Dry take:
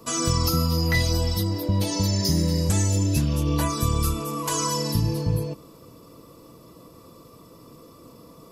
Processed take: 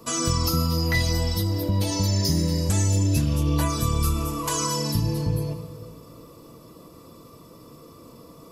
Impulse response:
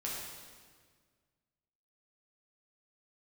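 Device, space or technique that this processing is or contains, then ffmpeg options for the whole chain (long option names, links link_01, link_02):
ducked reverb: -filter_complex "[0:a]asplit=3[link_01][link_02][link_03];[1:a]atrim=start_sample=2205[link_04];[link_02][link_04]afir=irnorm=-1:irlink=0[link_05];[link_03]apad=whole_len=375541[link_06];[link_05][link_06]sidechaincompress=threshold=-27dB:ratio=8:attack=16:release=131,volume=-7.5dB[link_07];[link_01][link_07]amix=inputs=2:normalize=0,volume=-1.5dB"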